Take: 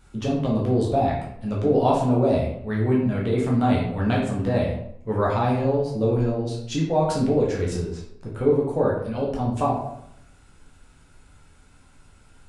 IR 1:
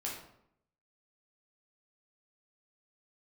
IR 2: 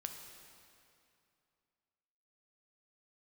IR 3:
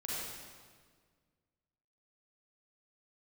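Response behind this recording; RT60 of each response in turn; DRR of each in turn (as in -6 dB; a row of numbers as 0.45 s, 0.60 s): 1; 0.70 s, 2.6 s, 1.7 s; -4.0 dB, 4.0 dB, -7.5 dB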